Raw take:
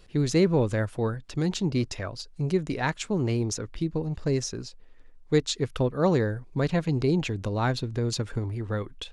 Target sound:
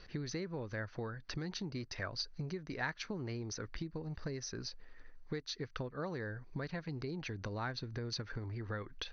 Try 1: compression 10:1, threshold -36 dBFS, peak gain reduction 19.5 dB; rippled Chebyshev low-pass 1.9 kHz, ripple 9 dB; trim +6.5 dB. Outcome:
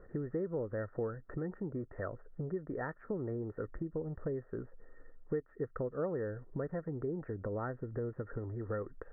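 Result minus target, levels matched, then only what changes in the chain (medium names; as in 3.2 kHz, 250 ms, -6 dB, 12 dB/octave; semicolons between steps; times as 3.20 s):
2 kHz band -8.5 dB
change: rippled Chebyshev low-pass 6.2 kHz, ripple 9 dB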